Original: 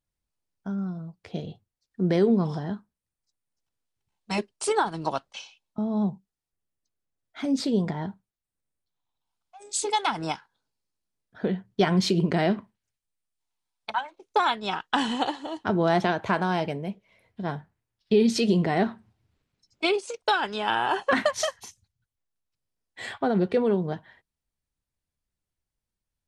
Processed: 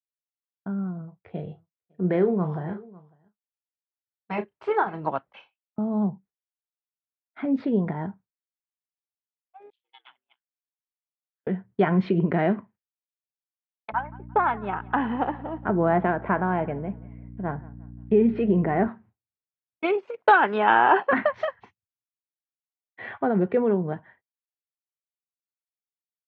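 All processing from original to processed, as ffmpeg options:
-filter_complex "[0:a]asettb=1/sr,asplit=3[a][b][c];[a]atrim=end=1.014[d];[b]atrim=start=1.01:end=5.08,asetpts=PTS-STARTPTS,afade=t=in:d=0.004:c=qsin,afade=t=out:st=4.066:d=0.004:c=qsin,equalizer=f=250:t=o:w=0.56:g=-7,asplit=2[e][f];[f]adelay=33,volume=-10dB[g];[e][g]amix=inputs=2:normalize=0,atrim=end_sample=179487,aecho=1:1:550:0.075,atrim=end_sample=179487[h];[c]atrim=start=5.076[i];[d][h]acrossfade=d=0.004:c1=hsin:c2=qsin[j];[j][i]acrossfade=d=0.004:c1=qsin:c2=hsin,asettb=1/sr,asplit=3[k][l][m];[k]atrim=end=9.704[n];[l]atrim=start=9.7:end=11.47,asetpts=PTS-STARTPTS,afade=t=in:d=0.004:c=qsin,afade=t=out:st=1.766:d=0.004:c=qsin,aeval=exprs='val(0)*sin(2*PI*63*n/s)':c=same,bandpass=f=3.2k:t=q:w=6.8[o];[m]atrim=start=11.466[p];[n][o]acrossfade=d=0.004:c1=hsin:c2=qsin[q];[q][p]acrossfade=d=0.004:c1=qsin:c2=hsin,asettb=1/sr,asplit=3[r][s][t];[r]atrim=end=13.924[u];[s]atrim=start=13.92:end=18.88,asetpts=PTS-STARTPTS,afade=t=in:d=0.004:c=qsin,afade=t=out:st=4.956:d=0.004:c=qsin,aeval=exprs='val(0)+0.0126*(sin(2*PI*60*n/s)+sin(2*PI*2*60*n/s)/2+sin(2*PI*3*60*n/s)/3+sin(2*PI*4*60*n/s)/4+sin(2*PI*5*60*n/s)/5)':c=same,lowpass=2.2k,aecho=1:1:175|350|525:0.0794|0.0302|0.0115,atrim=end_sample=218736[v];[t]atrim=start=18.876[w];[u][v]acrossfade=d=0.004:c1=hsin:c2=qsin[x];[x][w]acrossfade=d=0.004:c1=qsin:c2=hsin,asettb=1/sr,asplit=3[y][z][aa];[y]atrim=end=20.184[ab];[z]atrim=start=20.18:end=21.07,asetpts=PTS-STARTPTS,afade=t=in:d=0.004:c=qsin,afade=t=out:st=0.886:d=0.004:c=qsin,highpass=190,acontrast=84[ac];[aa]atrim=start=21.066[ad];[ab][ac]acrossfade=d=0.004:c1=hsin:c2=qsin[ae];[ae][ad]acrossfade=d=0.004:c1=qsin:c2=hsin,lowpass=f=2.2k:w=0.5412,lowpass=f=2.2k:w=1.3066,agate=range=-33dB:threshold=-46dB:ratio=3:detection=peak,highpass=82,volume=1dB"

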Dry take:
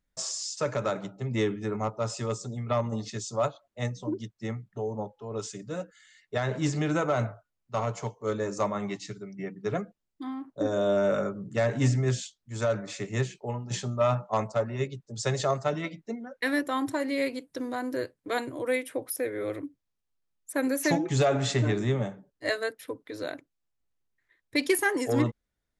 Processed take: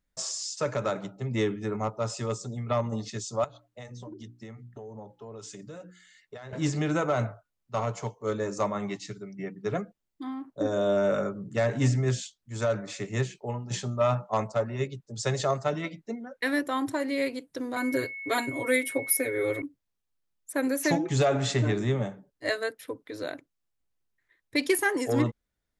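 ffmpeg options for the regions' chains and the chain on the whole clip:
-filter_complex "[0:a]asettb=1/sr,asplit=3[a][b][c];[a]atrim=end=3.444[d];[b]atrim=start=3.44:end=6.53,asetpts=PTS-STARTPTS,afade=t=in:d=0.004:c=qsin,afade=t=out:st=3.086:d=0.004:c=qsin,bandreject=f=60:t=h:w=6,bandreject=f=120:t=h:w=6,bandreject=f=180:t=h:w=6,bandreject=f=240:t=h:w=6,bandreject=f=300:t=h:w=6,bandreject=f=360:t=h:w=6,acompressor=threshold=-38dB:ratio=16:attack=3.2:release=140:knee=1:detection=peak[e];[c]atrim=start=6.526[f];[d][e]acrossfade=d=0.004:c1=hsin:c2=qsin[g];[g][f]acrossfade=d=0.004:c1=qsin:c2=hsin,asettb=1/sr,asplit=3[h][i][j];[h]atrim=end=17.764[k];[i]atrim=start=17.76:end=19.62,asetpts=PTS-STARTPTS,afade=t=in:d=0.004:c=qsin,afade=t=out:st=1.856:d=0.004:c=qsin,highshelf=f=8.9k:g=10,aecho=1:1:7.3:0.99,atrim=end_sample=82026,aeval=exprs='val(0)+0.0158*sin(2*PI*2200*n/s)':c=same[l];[j]atrim=start=19.616[m];[k][l]acrossfade=d=0.004:c1=hsin:c2=qsin[n];[n][m]acrossfade=d=0.004:c1=qsin:c2=hsin"

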